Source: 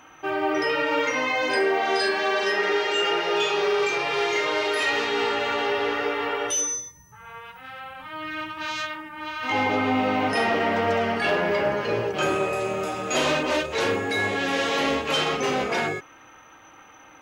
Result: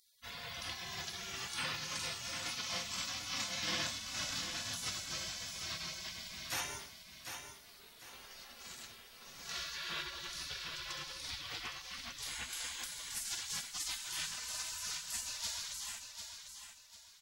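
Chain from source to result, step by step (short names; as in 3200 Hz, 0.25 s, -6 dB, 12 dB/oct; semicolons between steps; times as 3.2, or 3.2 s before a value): spectral gate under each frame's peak -30 dB weak; 10.02–12.5 tilt shelf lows +3.5 dB, about 810 Hz; feedback echo 0.747 s, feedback 33%, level -7.5 dB; gain +4.5 dB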